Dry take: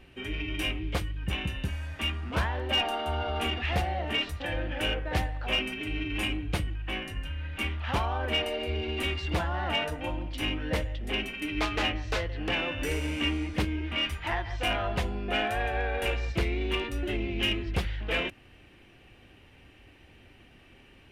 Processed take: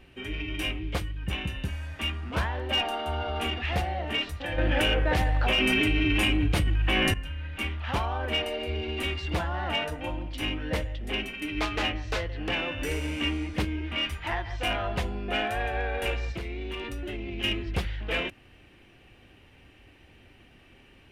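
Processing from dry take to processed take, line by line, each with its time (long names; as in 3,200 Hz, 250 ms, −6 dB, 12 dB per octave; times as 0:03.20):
0:04.58–0:07.14: envelope flattener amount 100%
0:16.35–0:17.44: downward compressor 10 to 1, threshold −30 dBFS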